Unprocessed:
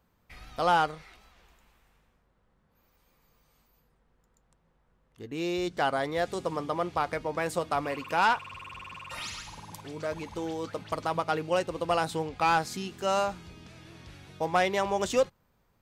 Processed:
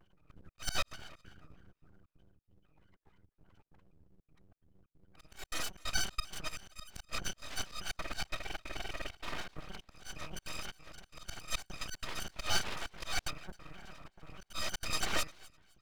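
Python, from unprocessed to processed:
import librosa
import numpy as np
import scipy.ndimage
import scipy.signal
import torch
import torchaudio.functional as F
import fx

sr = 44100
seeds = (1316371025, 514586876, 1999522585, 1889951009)

p1 = fx.bit_reversed(x, sr, seeds[0], block=256)
p2 = scipy.signal.sosfilt(scipy.signal.butter(2, 2000.0, 'lowpass', fs=sr, output='sos'), p1)
p3 = fx.spec_gate(p2, sr, threshold_db=-20, keep='strong')
p4 = fx.highpass(p3, sr, hz=43.0, slope=6)
p5 = fx.auto_swell(p4, sr, attack_ms=232.0)
p6 = fx.quant_float(p5, sr, bits=2)
p7 = p5 + (p6 * librosa.db_to_amplitude(-10.5))
p8 = fx.step_gate(p7, sr, bpm=182, pattern='xxxxxx.xxx.xxx.', floor_db=-60.0, edge_ms=4.5)
p9 = p8 + fx.echo_thinned(p8, sr, ms=258, feedback_pct=27, hz=820.0, wet_db=-21, dry=0)
p10 = np.abs(p9)
p11 = fx.vibrato_shape(p10, sr, shape='square', rate_hz=3.2, depth_cents=160.0)
y = p11 * librosa.db_to_amplitude(11.0)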